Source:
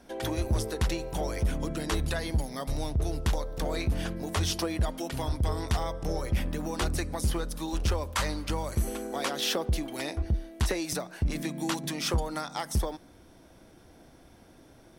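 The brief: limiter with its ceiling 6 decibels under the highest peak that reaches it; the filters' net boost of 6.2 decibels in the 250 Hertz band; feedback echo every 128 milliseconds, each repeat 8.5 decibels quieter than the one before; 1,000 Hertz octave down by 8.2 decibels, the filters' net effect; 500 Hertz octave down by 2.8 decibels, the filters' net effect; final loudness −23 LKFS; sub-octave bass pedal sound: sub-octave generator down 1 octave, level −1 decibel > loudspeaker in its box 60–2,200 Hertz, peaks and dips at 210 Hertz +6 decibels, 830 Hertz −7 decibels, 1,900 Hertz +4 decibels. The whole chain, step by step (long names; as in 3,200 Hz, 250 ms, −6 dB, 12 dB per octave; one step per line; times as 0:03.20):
parametric band 250 Hz +7.5 dB
parametric band 500 Hz −4.5 dB
parametric band 1,000 Hz −6.5 dB
brickwall limiter −21.5 dBFS
repeating echo 128 ms, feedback 38%, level −8.5 dB
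sub-octave generator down 1 octave, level −1 dB
loudspeaker in its box 60–2,200 Hz, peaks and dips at 210 Hz +6 dB, 830 Hz −7 dB, 1,900 Hz +4 dB
level +8 dB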